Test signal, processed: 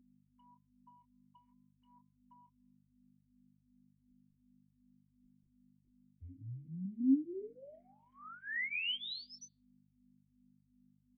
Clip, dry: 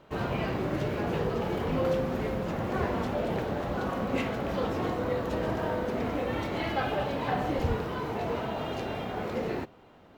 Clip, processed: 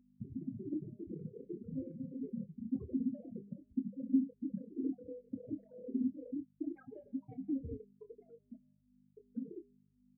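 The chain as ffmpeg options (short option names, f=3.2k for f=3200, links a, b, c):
-filter_complex "[0:a]afftfilt=real='re*gte(hypot(re,im),0.2)':imag='im*gte(hypot(re,im),0.2)':win_size=1024:overlap=0.75,bandreject=f=203.2:t=h:w=4,bandreject=f=406.4:t=h:w=4,bandreject=f=609.6:t=h:w=4,bandreject=f=812.8:t=h:w=4,bandreject=f=1.016k:t=h:w=4,bandreject=f=1.2192k:t=h:w=4,bandreject=f=1.4224k:t=h:w=4,bandreject=f=1.6256k:t=h:w=4,bandreject=f=1.8288k:t=h:w=4,bandreject=f=2.032k:t=h:w=4,bandreject=f=2.2352k:t=h:w=4,bandreject=f=2.4384k:t=h:w=4,bandreject=f=2.6416k:t=h:w=4,bandreject=f=2.8448k:t=h:w=4,bandreject=f=3.048k:t=h:w=4,bandreject=f=3.2512k:t=h:w=4,bandreject=f=3.4544k:t=h:w=4,bandreject=f=3.6576k:t=h:w=4,bandreject=f=3.8608k:t=h:w=4,bandreject=f=4.064k:t=h:w=4,bandreject=f=4.2672k:t=h:w=4,bandreject=f=4.4704k:t=h:w=4,bandreject=f=4.6736k:t=h:w=4,acrossover=split=130|1600[a][b][c];[a]asoftclip=type=tanh:threshold=-30dB[d];[b]acompressor=threshold=-40dB:ratio=16[e];[d][e][c]amix=inputs=3:normalize=0,aeval=exprs='val(0)+0.000794*(sin(2*PI*50*n/s)+sin(2*PI*2*50*n/s)/2+sin(2*PI*3*50*n/s)/3+sin(2*PI*4*50*n/s)/4+sin(2*PI*5*50*n/s)/5)':c=same,asplit=3[f][g][h];[f]bandpass=f=270:t=q:w=8,volume=0dB[i];[g]bandpass=f=2.29k:t=q:w=8,volume=-6dB[j];[h]bandpass=f=3.01k:t=q:w=8,volume=-9dB[k];[i][j][k]amix=inputs=3:normalize=0,asplit=2[l][m];[m]adelay=26,volume=-10dB[n];[l][n]amix=inputs=2:normalize=0,asplit=2[o][p];[p]afreqshift=-2.7[q];[o][q]amix=inputs=2:normalize=1,volume=16dB"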